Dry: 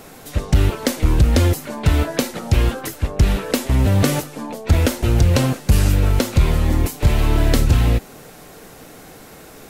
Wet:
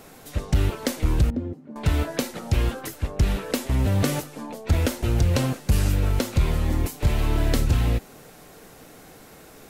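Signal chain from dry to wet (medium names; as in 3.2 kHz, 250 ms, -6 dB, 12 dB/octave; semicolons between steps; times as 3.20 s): 1.30–1.76 s: band-pass filter 230 Hz, Q 1.9; trim -6 dB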